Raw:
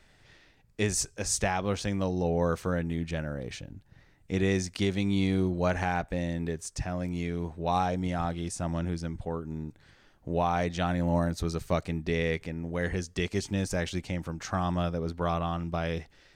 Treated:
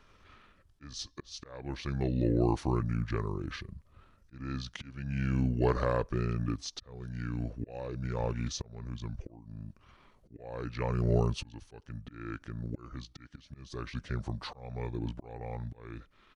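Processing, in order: auto swell 0.73 s; pitch shift -6.5 st

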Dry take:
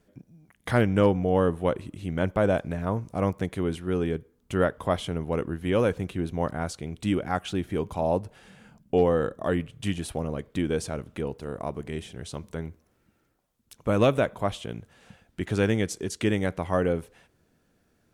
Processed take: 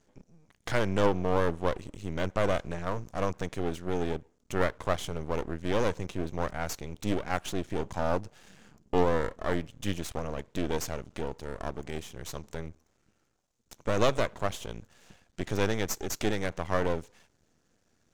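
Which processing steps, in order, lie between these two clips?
synth low-pass 6700 Hz, resonance Q 3.1; half-wave rectifier

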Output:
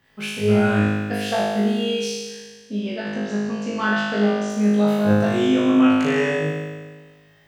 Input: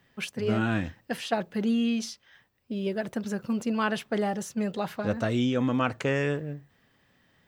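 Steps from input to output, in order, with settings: 2.09–4.5 LPF 6200 Hz 24 dB/oct; flutter echo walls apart 3.3 m, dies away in 1.5 s

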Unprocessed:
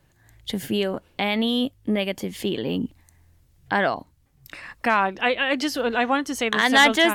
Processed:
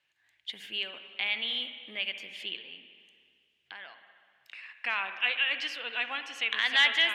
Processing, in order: 2.56–4.8 compressor 2.5:1, threshold -36 dBFS, peak gain reduction 12.5 dB; band-pass 2700 Hz, Q 2.7; reverb RT60 2.1 s, pre-delay 50 ms, DRR 8.5 dB

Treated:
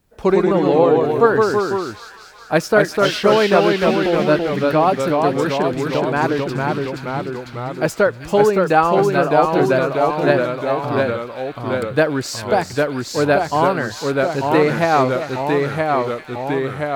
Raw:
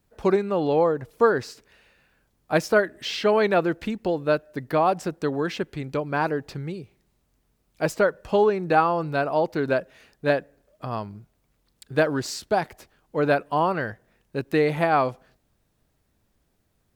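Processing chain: echoes that change speed 90 ms, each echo -1 st, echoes 3; thin delay 0.39 s, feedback 66%, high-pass 2000 Hz, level -9 dB; gain +5 dB

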